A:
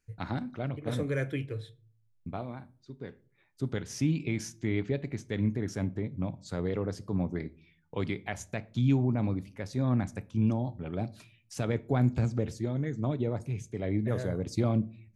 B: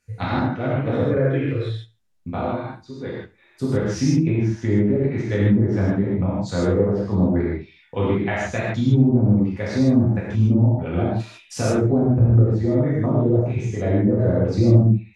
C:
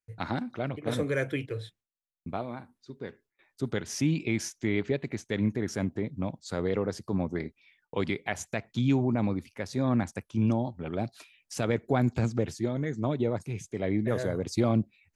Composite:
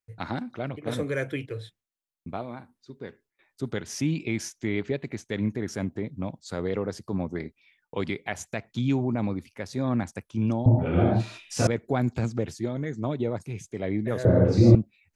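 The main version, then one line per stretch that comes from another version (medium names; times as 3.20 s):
C
10.66–11.67 s: from B
14.25–14.75 s: from B
not used: A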